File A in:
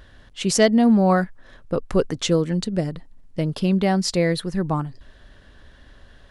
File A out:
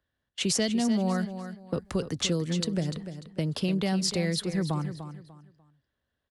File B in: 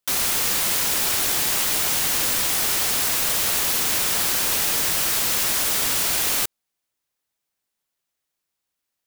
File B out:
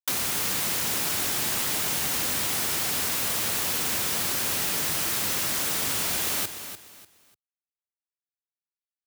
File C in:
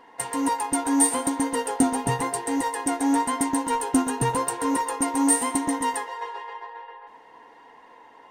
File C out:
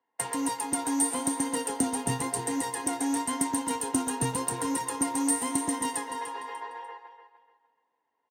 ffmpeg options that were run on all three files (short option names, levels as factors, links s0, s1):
-filter_complex "[0:a]highpass=74,agate=range=0.0316:threshold=0.00794:ratio=16:detection=peak,acrossover=split=150|300|2800[s0][s1][s2][s3];[s0]acompressor=threshold=0.0224:ratio=4[s4];[s1]acompressor=threshold=0.0178:ratio=4[s5];[s2]acompressor=threshold=0.02:ratio=4[s6];[s3]acompressor=threshold=0.0501:ratio=4[s7];[s4][s5][s6][s7]amix=inputs=4:normalize=0,asplit=2[s8][s9];[s9]aecho=0:1:296|592|888:0.299|0.0836|0.0234[s10];[s8][s10]amix=inputs=2:normalize=0"